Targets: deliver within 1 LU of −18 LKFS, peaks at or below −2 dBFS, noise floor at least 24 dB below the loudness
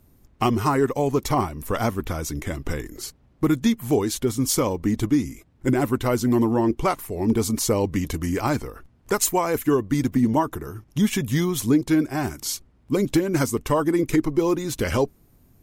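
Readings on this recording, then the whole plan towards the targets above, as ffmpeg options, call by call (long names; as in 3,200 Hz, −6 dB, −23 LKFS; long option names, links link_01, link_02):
integrated loudness −23.5 LKFS; sample peak −9.5 dBFS; target loudness −18.0 LKFS
→ -af "volume=5.5dB"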